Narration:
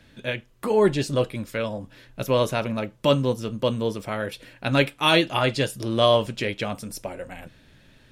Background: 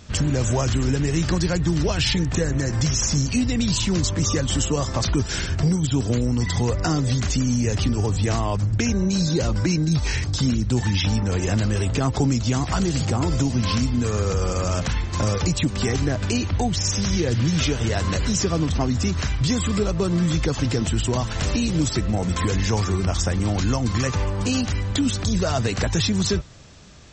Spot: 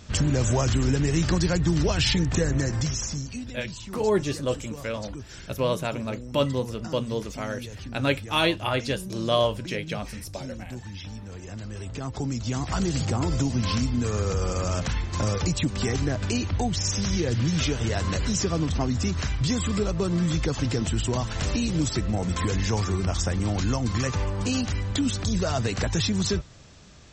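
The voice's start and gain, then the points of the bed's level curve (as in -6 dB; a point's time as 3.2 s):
3.30 s, -4.0 dB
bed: 2.61 s -1.5 dB
3.58 s -17 dB
11.45 s -17 dB
12.84 s -3.5 dB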